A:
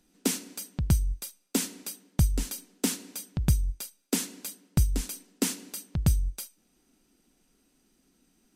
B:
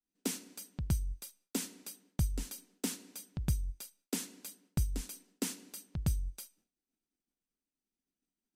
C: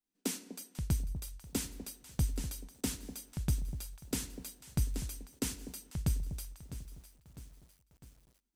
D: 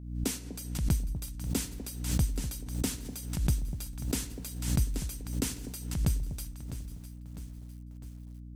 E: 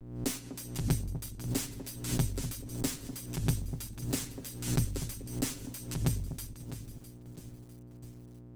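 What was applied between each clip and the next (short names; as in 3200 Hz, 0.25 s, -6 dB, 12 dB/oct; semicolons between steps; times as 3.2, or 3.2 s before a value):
expander -55 dBFS; gain -8.5 dB
echo with dull and thin repeats by turns 0.247 s, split 810 Hz, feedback 53%, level -10.5 dB; lo-fi delay 0.653 s, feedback 55%, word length 9-bit, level -13.5 dB
hum 60 Hz, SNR 10 dB; backwards sustainer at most 66 dB/s; gain +3 dB
minimum comb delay 7.4 ms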